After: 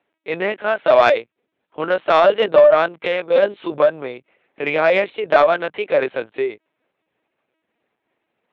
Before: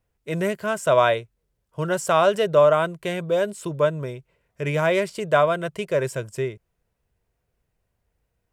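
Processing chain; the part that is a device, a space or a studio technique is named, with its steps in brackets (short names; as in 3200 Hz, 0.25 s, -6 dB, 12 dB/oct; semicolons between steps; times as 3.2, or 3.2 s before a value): 3.08–3.8 doubler 15 ms -4 dB; talking toy (LPC vocoder at 8 kHz pitch kept; HPF 350 Hz 12 dB/oct; bell 2300 Hz +4 dB 0.33 oct; soft clip -9 dBFS, distortion -21 dB); gain +7 dB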